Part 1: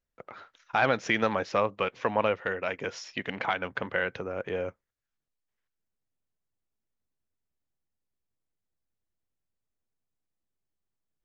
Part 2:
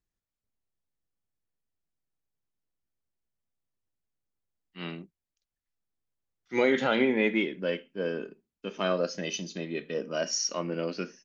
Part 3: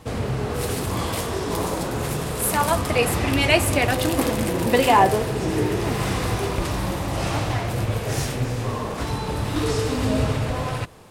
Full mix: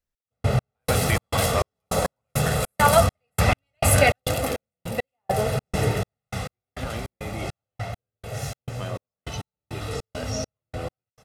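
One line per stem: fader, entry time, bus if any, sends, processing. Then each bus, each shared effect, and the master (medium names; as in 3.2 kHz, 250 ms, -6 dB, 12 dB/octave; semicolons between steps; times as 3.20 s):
-1.5 dB, 0.00 s, no send, none
-7.0 dB, 0.00 s, no send, compressor with a negative ratio -28 dBFS
+2.0 dB, 0.25 s, no send, high-pass 60 Hz; comb 1.5 ms, depth 82%; auto duck -11 dB, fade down 0.80 s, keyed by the second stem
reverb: none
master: trance gate "x..x..xx.x" 102 bpm -60 dB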